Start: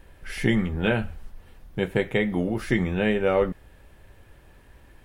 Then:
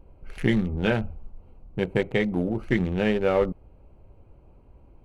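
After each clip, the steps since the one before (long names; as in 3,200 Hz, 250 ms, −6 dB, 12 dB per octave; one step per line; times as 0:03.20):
adaptive Wiener filter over 25 samples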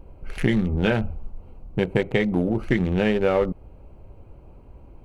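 downward compressor 2.5 to 1, threshold −25 dBFS, peak gain reduction 6.5 dB
level +6.5 dB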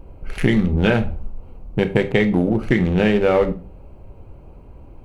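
convolution reverb RT60 0.35 s, pre-delay 24 ms, DRR 9.5 dB
level +4 dB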